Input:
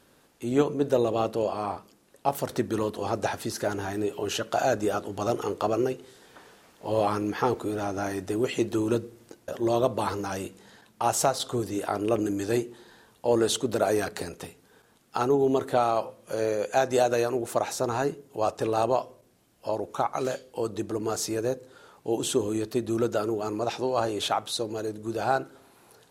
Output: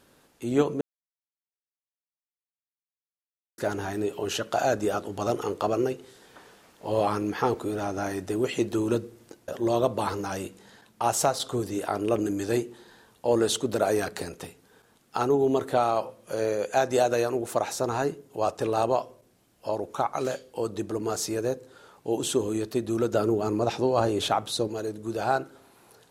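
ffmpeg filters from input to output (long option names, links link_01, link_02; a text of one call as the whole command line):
ffmpeg -i in.wav -filter_complex "[0:a]asettb=1/sr,asplit=3[link_01][link_02][link_03];[link_01]atrim=end=23.134[link_04];[link_02]atrim=start=23.13:end=24.68,asetpts=PTS-STARTPTS,afade=type=in:duration=0.004:curve=qsin,afade=type=out:start_time=1.546:duration=0.004:curve=qsin,lowshelf=frequency=400:gain=7.5[link_05];[link_03]atrim=start=24.676[link_06];[link_04][link_05]acrossfade=duration=0.004:curve1=hsin:curve2=qsin[link_07];[link_07][link_06]acrossfade=duration=0.004:curve1=qsin:curve2=hsin,asplit=3[link_08][link_09][link_10];[link_08]atrim=end=0.81,asetpts=PTS-STARTPTS,afade=type=out:start_time=0.806:duration=0.004:curve=hsin[link_11];[link_09]atrim=start=0.81:end=3.58,asetpts=PTS-STARTPTS,volume=0[link_12];[link_10]atrim=start=3.58,asetpts=PTS-STARTPTS,afade=type=in:duration=0.004:curve=hsin[link_13];[link_11][link_12][link_13]concat=n=3:v=0:a=1" out.wav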